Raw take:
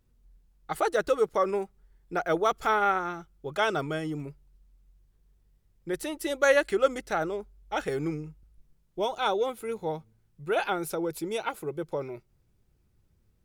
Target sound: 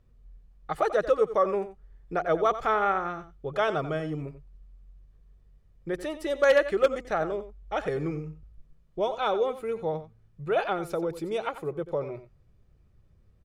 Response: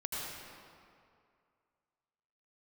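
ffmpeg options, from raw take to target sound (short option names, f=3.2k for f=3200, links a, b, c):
-filter_complex "[0:a]aecho=1:1:1.7:0.31,asplit=2[a][b];[b]acompressor=threshold=-41dB:ratio=6,volume=-2dB[c];[a][c]amix=inputs=2:normalize=0,aemphasis=mode=reproduction:type=75kf,aecho=1:1:90:0.224,aeval=exprs='0.251*(abs(mod(val(0)/0.251+3,4)-2)-1)':c=same"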